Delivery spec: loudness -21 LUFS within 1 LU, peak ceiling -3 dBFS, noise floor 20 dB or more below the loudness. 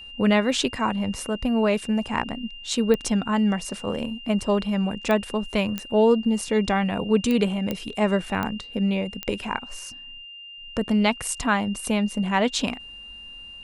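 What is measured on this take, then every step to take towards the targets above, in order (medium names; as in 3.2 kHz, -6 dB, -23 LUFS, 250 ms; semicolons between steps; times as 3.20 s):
clicks found 7; steady tone 2.8 kHz; tone level -39 dBFS; loudness -24.0 LUFS; peak level -7.0 dBFS; loudness target -21.0 LUFS
-> de-click; band-stop 2.8 kHz, Q 30; trim +3 dB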